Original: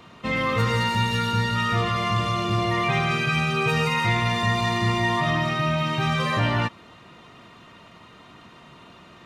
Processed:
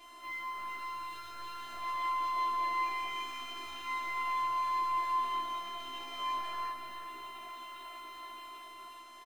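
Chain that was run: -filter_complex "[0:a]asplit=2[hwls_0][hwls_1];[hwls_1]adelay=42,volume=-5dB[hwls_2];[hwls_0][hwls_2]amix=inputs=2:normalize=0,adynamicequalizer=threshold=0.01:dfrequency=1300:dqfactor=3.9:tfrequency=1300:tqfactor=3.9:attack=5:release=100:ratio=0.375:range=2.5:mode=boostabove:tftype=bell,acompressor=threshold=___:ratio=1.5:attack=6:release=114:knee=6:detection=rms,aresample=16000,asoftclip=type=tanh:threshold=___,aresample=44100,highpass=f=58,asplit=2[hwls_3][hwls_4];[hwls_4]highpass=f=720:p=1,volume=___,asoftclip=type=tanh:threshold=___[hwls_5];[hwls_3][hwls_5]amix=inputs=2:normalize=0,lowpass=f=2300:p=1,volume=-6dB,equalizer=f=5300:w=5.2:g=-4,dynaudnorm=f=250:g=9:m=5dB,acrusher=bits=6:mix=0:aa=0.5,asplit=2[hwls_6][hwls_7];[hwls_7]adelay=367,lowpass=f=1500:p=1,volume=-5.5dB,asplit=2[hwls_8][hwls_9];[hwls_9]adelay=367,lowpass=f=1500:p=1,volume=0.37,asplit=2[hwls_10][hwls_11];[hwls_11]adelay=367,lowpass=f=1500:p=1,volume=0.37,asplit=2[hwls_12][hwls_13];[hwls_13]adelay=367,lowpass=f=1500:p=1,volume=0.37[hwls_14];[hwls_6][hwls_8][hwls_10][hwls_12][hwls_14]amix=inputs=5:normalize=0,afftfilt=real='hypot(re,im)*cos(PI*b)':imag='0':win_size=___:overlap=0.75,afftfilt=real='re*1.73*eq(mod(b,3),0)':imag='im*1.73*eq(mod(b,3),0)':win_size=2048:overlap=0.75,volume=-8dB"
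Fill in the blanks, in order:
-36dB, -29dB, 18dB, -24dB, 512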